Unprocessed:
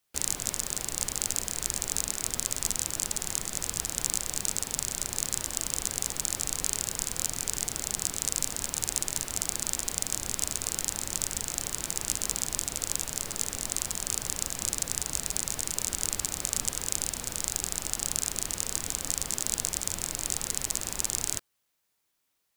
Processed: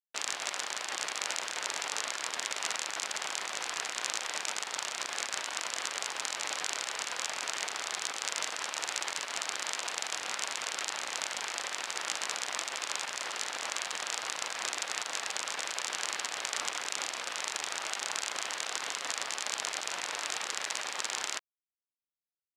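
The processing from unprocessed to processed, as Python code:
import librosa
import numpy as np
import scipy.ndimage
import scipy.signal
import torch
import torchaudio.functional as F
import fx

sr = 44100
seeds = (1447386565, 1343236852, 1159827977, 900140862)

y = fx.quant_dither(x, sr, seeds[0], bits=6, dither='none')
y = fx.bandpass_edges(y, sr, low_hz=730.0, high_hz=3300.0)
y = y * 10.0 ** (7.0 / 20.0)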